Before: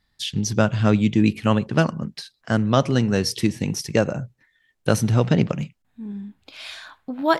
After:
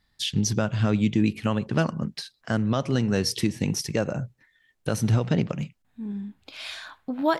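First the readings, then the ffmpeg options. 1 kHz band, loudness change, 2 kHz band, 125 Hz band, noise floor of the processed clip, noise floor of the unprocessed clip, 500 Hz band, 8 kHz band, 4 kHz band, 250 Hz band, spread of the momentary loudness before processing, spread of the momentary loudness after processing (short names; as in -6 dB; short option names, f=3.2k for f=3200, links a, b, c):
-6.0 dB, -5.0 dB, -5.0 dB, -3.5 dB, -70 dBFS, -70 dBFS, -5.5 dB, -1.5 dB, -2.0 dB, -4.0 dB, 17 LU, 13 LU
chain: -af "alimiter=limit=-12dB:level=0:latency=1:release=244"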